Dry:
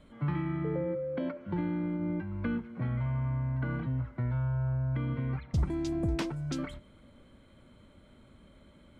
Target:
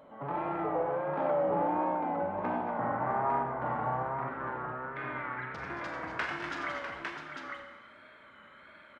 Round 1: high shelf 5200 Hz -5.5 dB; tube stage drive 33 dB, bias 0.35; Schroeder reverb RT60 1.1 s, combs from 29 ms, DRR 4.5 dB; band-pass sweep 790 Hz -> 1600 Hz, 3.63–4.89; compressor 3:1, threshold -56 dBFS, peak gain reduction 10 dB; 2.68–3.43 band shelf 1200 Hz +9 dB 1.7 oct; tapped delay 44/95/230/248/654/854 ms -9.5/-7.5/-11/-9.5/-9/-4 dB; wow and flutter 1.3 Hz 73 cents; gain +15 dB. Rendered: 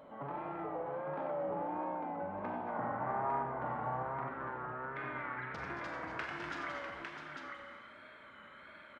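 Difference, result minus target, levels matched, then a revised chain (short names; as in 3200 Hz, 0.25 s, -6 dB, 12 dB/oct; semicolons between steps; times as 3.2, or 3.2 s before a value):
compressor: peak gain reduction +10 dB
high shelf 5200 Hz -5.5 dB; tube stage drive 33 dB, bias 0.35; Schroeder reverb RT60 1.1 s, combs from 29 ms, DRR 4.5 dB; band-pass sweep 790 Hz -> 1600 Hz, 3.63–4.89; 2.68–3.43 band shelf 1200 Hz +9 dB 1.7 oct; tapped delay 44/95/230/248/654/854 ms -9.5/-7.5/-11/-9.5/-9/-4 dB; wow and flutter 1.3 Hz 73 cents; gain +15 dB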